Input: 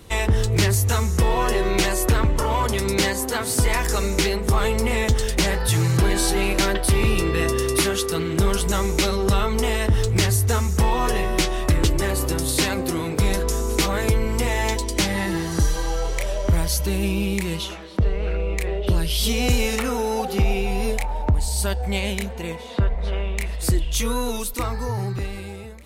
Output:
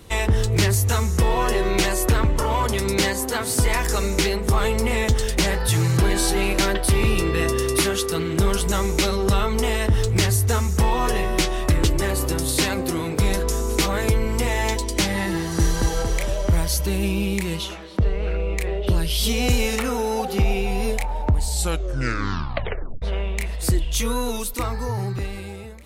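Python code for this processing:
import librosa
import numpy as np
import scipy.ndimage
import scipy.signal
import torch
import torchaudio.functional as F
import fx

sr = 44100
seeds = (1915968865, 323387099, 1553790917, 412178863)

y = fx.echo_throw(x, sr, start_s=15.36, length_s=0.43, ms=230, feedback_pct=55, wet_db=-3.0)
y = fx.edit(y, sr, fx.tape_stop(start_s=21.48, length_s=1.54), tone=tone)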